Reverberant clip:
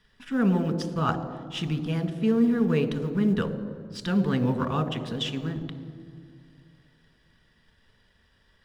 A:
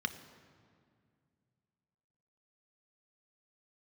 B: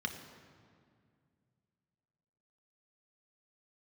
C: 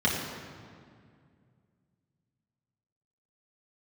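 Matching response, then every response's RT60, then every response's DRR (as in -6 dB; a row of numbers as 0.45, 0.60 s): A; 2.2, 2.2, 2.1 s; 9.0, 4.0, -5.5 dB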